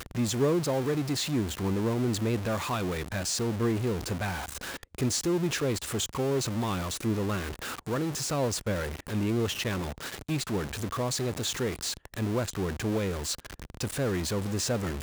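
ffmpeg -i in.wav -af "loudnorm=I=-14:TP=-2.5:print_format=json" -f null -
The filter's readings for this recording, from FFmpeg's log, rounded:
"input_i" : "-30.2",
"input_tp" : "-15.1",
"input_lra" : "1.9",
"input_thresh" : "-40.3",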